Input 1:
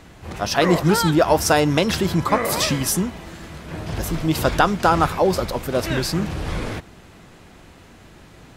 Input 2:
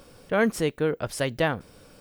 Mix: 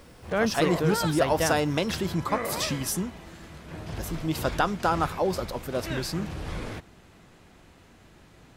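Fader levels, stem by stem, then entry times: -8.0, -3.0 dB; 0.00, 0.00 s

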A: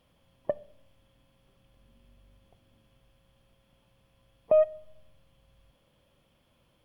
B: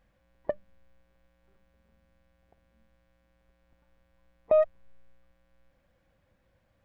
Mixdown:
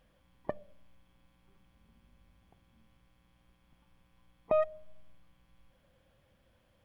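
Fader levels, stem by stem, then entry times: -6.0, -0.5 dB; 0.00, 0.00 s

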